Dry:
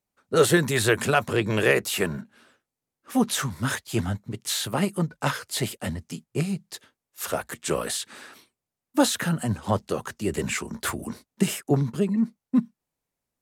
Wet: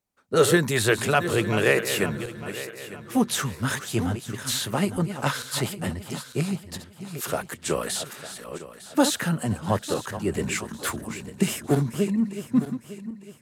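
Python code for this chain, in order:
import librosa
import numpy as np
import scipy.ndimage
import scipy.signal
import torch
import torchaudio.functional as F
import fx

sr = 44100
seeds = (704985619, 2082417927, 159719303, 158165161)

y = fx.reverse_delay_fb(x, sr, ms=452, feedback_pct=55, wet_db=-10.5)
y = fx.band_widen(y, sr, depth_pct=40, at=(10.17, 11.11))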